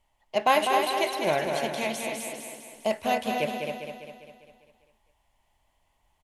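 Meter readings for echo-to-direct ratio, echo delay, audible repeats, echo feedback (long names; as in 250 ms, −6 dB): −2.0 dB, 200 ms, 12, repeats not evenly spaced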